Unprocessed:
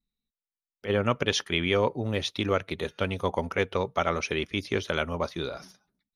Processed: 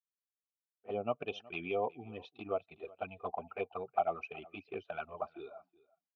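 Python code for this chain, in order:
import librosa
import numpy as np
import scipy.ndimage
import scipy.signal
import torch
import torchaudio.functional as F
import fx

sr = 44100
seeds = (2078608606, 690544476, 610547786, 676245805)

p1 = fx.bin_expand(x, sr, power=1.5)
p2 = fx.env_flanger(p1, sr, rest_ms=11.5, full_db=-24.0)
p3 = scipy.signal.sosfilt(scipy.signal.butter(2, 5300.0, 'lowpass', fs=sr, output='sos'), p2)
p4 = fx.low_shelf(p3, sr, hz=350.0, db=4.0)
p5 = fx.env_lowpass(p4, sr, base_hz=1400.0, full_db=-27.5)
p6 = fx.vowel_filter(p5, sr, vowel='a')
p7 = fx.high_shelf(p6, sr, hz=2400.0, db=-9.5)
p8 = fx.notch_comb(p7, sr, f0_hz=550.0)
p9 = p8 + fx.echo_single(p8, sr, ms=370, db=-22.5, dry=0)
y = p9 * librosa.db_to_amplitude(9.5)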